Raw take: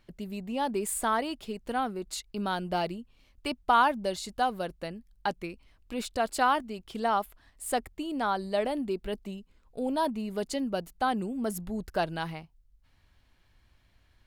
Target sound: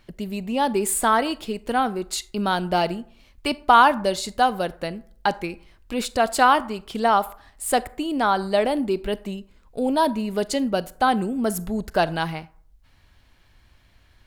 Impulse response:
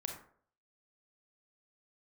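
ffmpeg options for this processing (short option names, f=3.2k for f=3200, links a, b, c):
-filter_complex "[0:a]asplit=2[a][b];[1:a]atrim=start_sample=2205,lowshelf=f=290:g=-10.5[c];[b][c]afir=irnorm=-1:irlink=0,volume=-10.5dB[d];[a][d]amix=inputs=2:normalize=0,volume=7dB"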